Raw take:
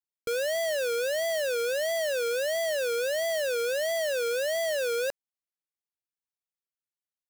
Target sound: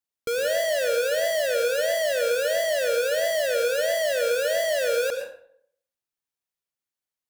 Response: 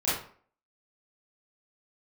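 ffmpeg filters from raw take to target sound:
-filter_complex "[0:a]asplit=2[link_01][link_02];[1:a]atrim=start_sample=2205,asetrate=33075,aresample=44100,adelay=70[link_03];[link_02][link_03]afir=irnorm=-1:irlink=0,volume=-17.5dB[link_04];[link_01][link_04]amix=inputs=2:normalize=0,volume=3dB"

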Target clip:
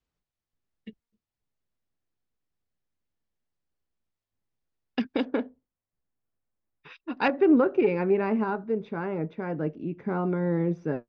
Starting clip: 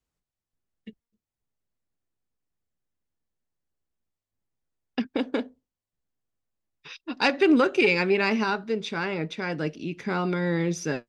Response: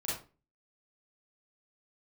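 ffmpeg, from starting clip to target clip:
-af "asetnsamples=nb_out_samples=441:pad=0,asendcmd='5.25 lowpass f 2000;7.28 lowpass f 1000',lowpass=5300"

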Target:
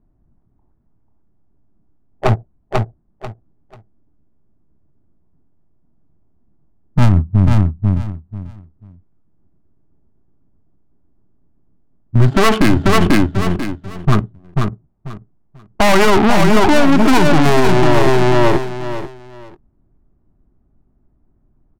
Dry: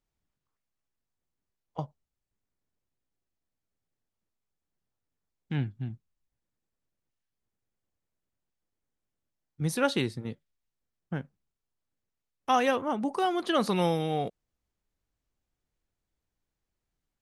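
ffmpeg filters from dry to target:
ffmpeg -i in.wav -af "bass=frequency=250:gain=-6,treble=frequency=4000:gain=-13,aeval=exprs='0.2*sin(PI/2*2.51*val(0)/0.2)':channel_layout=same,adynamicsmooth=sensitivity=2:basefreq=500,aeval=exprs='clip(val(0),-1,0.0168)':channel_layout=same,asetrate=34839,aresample=44100,equalizer=frequency=500:width_type=o:width=0.28:gain=-14,aecho=1:1:490|980|1470:0.562|0.124|0.0272,alimiter=level_in=22dB:limit=-1dB:release=50:level=0:latency=1,volume=-1dB" out.wav

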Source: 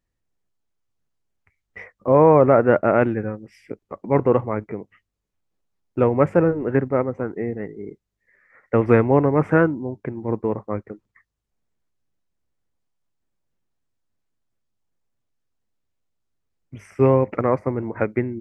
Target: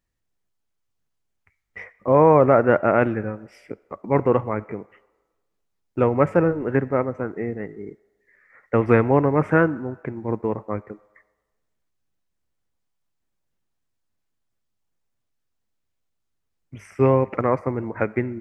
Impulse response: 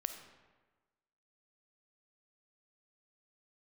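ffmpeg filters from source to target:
-filter_complex "[0:a]asplit=2[link_01][link_02];[link_02]highpass=640[link_03];[1:a]atrim=start_sample=2205[link_04];[link_03][link_04]afir=irnorm=-1:irlink=0,volume=-9dB[link_05];[link_01][link_05]amix=inputs=2:normalize=0,volume=-1dB"

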